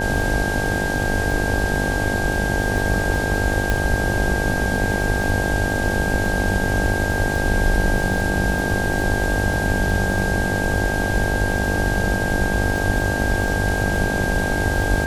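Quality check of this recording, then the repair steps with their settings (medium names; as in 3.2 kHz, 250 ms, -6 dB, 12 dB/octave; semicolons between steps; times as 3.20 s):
buzz 50 Hz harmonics 18 -25 dBFS
crackle 22 per s -25 dBFS
whine 1.6 kHz -24 dBFS
3.70 s: pop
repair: de-click; de-hum 50 Hz, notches 18; band-stop 1.6 kHz, Q 30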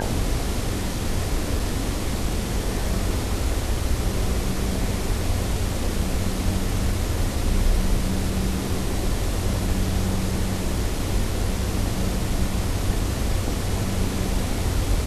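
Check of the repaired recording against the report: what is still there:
nothing left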